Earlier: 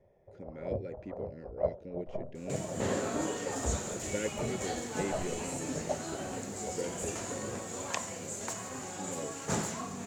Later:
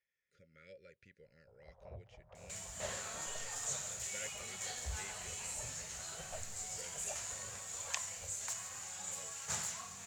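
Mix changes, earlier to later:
first sound: entry +1.20 s; master: add amplifier tone stack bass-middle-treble 10-0-10

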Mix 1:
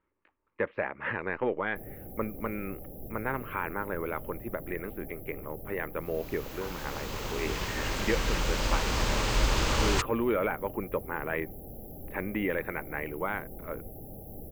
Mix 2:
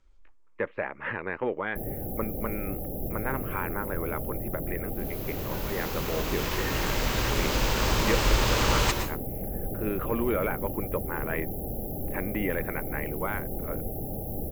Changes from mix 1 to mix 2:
first sound +9.0 dB; second sound: entry -1.10 s; reverb: on, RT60 0.35 s

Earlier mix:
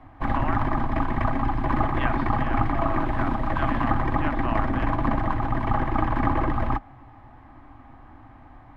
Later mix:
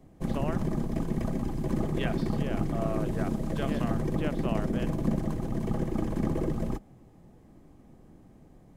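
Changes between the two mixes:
background -8.5 dB; master: remove FFT filter 120 Hz 0 dB, 180 Hz -20 dB, 270 Hz 0 dB, 440 Hz -15 dB, 810 Hz +9 dB, 1.2 kHz +11 dB, 1.8 kHz +8 dB, 3.9 kHz -4 dB, 6.6 kHz -21 dB, 13 kHz -23 dB

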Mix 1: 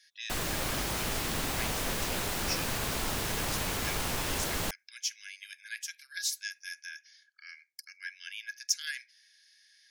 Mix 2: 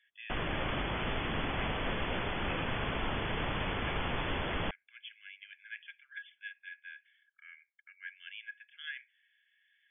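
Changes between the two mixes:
speech -4.0 dB; master: add brick-wall FIR low-pass 3.5 kHz

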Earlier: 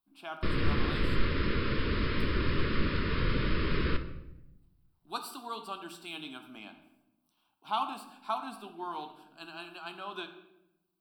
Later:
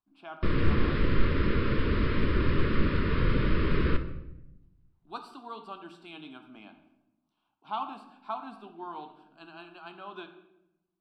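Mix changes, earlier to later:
background +4.5 dB; master: add tape spacing loss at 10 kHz 21 dB

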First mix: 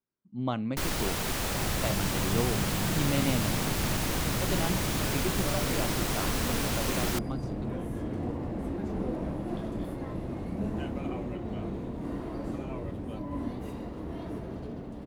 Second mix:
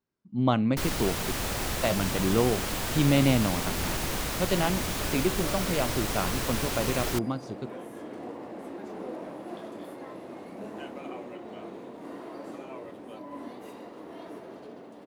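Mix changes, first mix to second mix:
speech +7.0 dB; second sound: add high-pass 380 Hz 12 dB/octave

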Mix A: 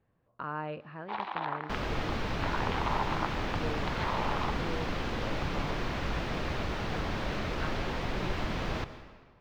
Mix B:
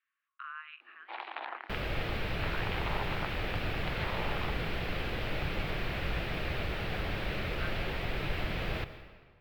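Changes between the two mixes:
speech: add Chebyshev band-pass 1.1–3.9 kHz, order 5; first sound: send off; master: add fifteen-band graphic EQ 250 Hz -7 dB, 1 kHz -7 dB, 2.5 kHz +4 dB, 6.3 kHz -11 dB, 16 kHz +11 dB

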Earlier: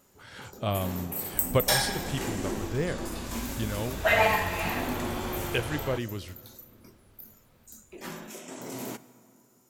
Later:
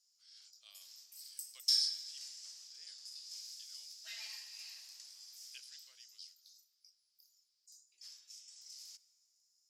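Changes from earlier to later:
second sound -9.5 dB; master: add ladder band-pass 5.3 kHz, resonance 80%

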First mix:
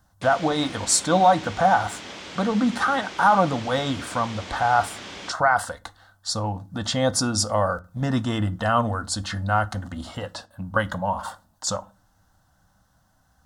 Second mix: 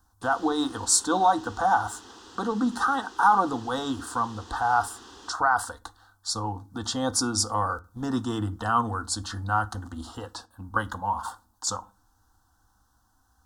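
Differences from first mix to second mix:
background -5.5 dB; master: add static phaser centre 600 Hz, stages 6

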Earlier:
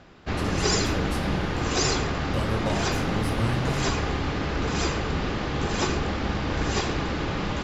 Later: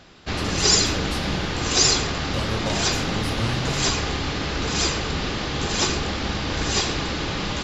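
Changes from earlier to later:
background: remove distance through air 77 m; master: add peaking EQ 4.1 kHz +7 dB 1.5 oct

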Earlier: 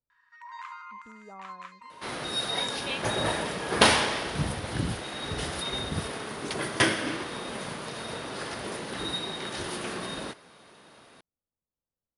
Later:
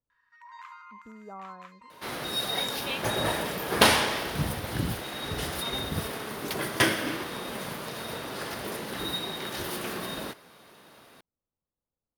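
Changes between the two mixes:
speech +3.5 dB; first sound -4.5 dB; master: remove brick-wall FIR low-pass 11 kHz

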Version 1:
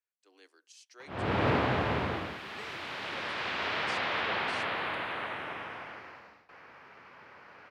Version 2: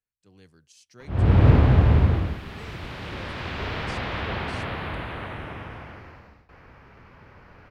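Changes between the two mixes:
speech: remove Chebyshev high-pass 280 Hz, order 6; master: remove frequency weighting A

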